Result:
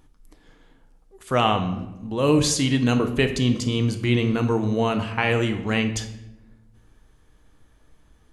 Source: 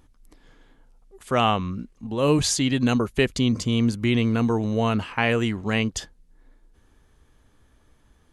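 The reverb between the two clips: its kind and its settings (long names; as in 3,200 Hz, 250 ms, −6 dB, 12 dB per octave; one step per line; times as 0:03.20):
rectangular room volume 370 cubic metres, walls mixed, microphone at 0.56 metres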